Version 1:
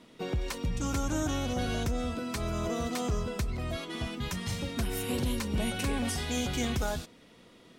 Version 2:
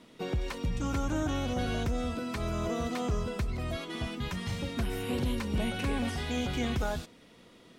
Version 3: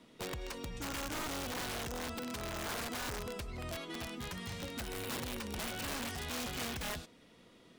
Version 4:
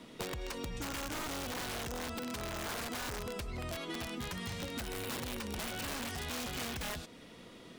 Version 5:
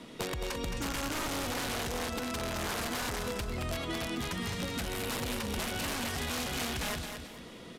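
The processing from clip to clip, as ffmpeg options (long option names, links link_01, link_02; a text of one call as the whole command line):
ffmpeg -i in.wav -filter_complex "[0:a]acrossover=split=3800[link_01][link_02];[link_02]acompressor=threshold=-48dB:ratio=4:attack=1:release=60[link_03];[link_01][link_03]amix=inputs=2:normalize=0" out.wav
ffmpeg -i in.wav -filter_complex "[0:a]acrossover=split=320[link_01][link_02];[link_01]alimiter=level_in=10dB:limit=-24dB:level=0:latency=1:release=191,volume=-10dB[link_03];[link_03][link_02]amix=inputs=2:normalize=0,aeval=exprs='(mod(26.6*val(0)+1,2)-1)/26.6':channel_layout=same,volume=-4.5dB" out.wav
ffmpeg -i in.wav -af "acompressor=threshold=-45dB:ratio=6,volume=8dB" out.wav
ffmpeg -i in.wav -af "aecho=1:1:218|436|654|872:0.447|0.143|0.0457|0.0146,aresample=32000,aresample=44100,volume=4dB" out.wav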